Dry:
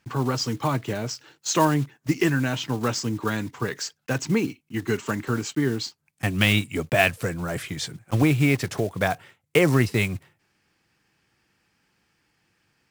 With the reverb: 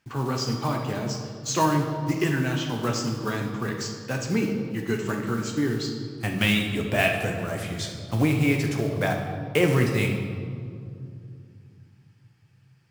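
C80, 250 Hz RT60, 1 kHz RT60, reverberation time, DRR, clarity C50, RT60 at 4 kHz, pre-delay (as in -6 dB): 6.0 dB, 3.5 s, 2.2 s, 2.5 s, 1.5 dB, 4.5 dB, 1.4 s, 14 ms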